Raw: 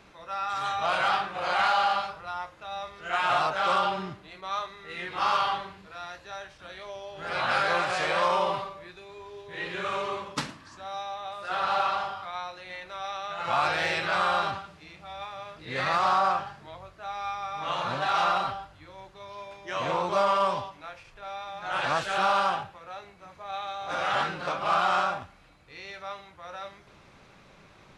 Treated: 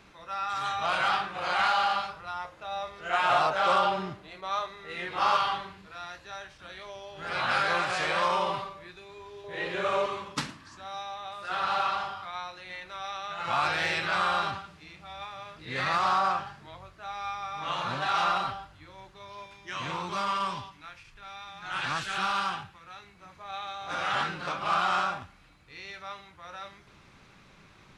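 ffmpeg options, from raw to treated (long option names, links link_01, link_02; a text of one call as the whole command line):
ffmpeg -i in.wav -af "asetnsamples=nb_out_samples=441:pad=0,asendcmd='2.45 equalizer g 2.5;5.37 equalizer g -4;9.44 equalizer g 6.5;10.06 equalizer g -5;19.46 equalizer g -15;23.15 equalizer g -6.5',equalizer=frequency=590:width_type=o:width=1.1:gain=-4" out.wav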